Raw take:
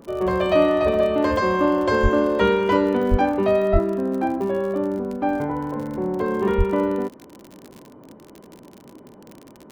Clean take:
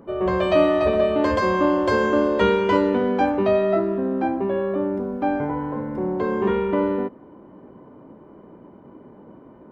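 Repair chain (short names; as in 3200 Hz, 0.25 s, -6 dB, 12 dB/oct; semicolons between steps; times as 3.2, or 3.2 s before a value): de-click; de-plosive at 2.02/3.1/3.72/6.57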